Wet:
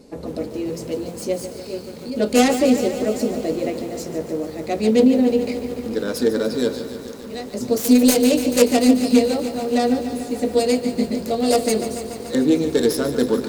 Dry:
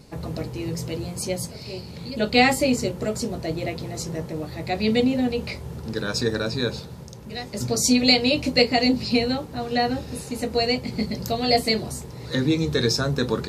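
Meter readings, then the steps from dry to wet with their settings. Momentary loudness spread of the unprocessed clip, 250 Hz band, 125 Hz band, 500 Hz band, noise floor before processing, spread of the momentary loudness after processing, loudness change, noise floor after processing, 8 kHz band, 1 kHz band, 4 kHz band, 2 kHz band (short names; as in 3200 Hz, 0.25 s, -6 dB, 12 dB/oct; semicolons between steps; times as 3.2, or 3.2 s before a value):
15 LU, +6.0 dB, -6.5 dB, +6.0 dB, -39 dBFS, 14 LU, +3.5 dB, -35 dBFS, +2.5 dB, +0.5 dB, -5.0 dB, -4.0 dB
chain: self-modulated delay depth 0.26 ms; ten-band EQ 125 Hz -10 dB, 250 Hz +11 dB, 500 Hz +9 dB, 8000 Hz +4 dB; lo-fi delay 0.145 s, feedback 80%, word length 6-bit, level -11 dB; gain -4 dB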